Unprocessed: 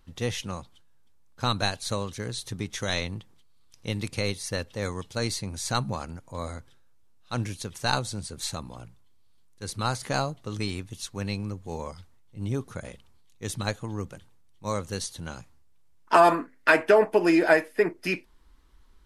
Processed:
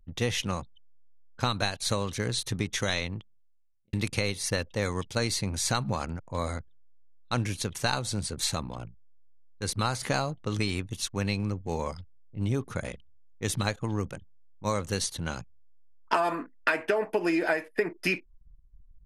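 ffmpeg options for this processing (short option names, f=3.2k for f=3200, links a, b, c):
-filter_complex "[0:a]asplit=2[a][b];[a]atrim=end=3.93,asetpts=PTS-STARTPTS,afade=t=out:st=2.67:d=1.26[c];[b]atrim=start=3.93,asetpts=PTS-STARTPTS,afade=t=in:d=0.004:c=hsin[d];[c][d]concat=n=2:v=0:a=1,anlmdn=0.00631,equalizer=f=2.3k:w=1.5:g=3,acompressor=threshold=-27dB:ratio=8,volume=4dB"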